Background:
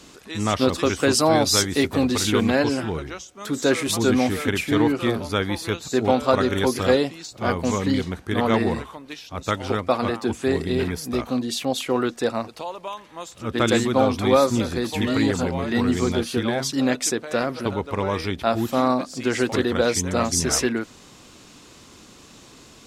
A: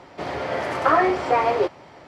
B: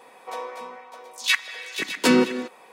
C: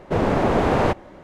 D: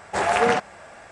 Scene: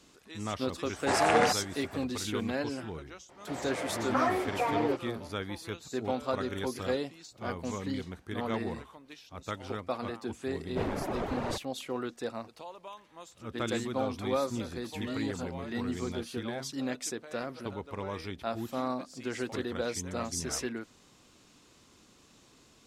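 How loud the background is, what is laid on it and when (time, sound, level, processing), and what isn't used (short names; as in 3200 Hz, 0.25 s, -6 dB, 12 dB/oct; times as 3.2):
background -13 dB
0.93 add D -5.5 dB
3.29 add A -11 dB
10.65 add C -12.5 dB + reverb removal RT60 1.5 s
not used: B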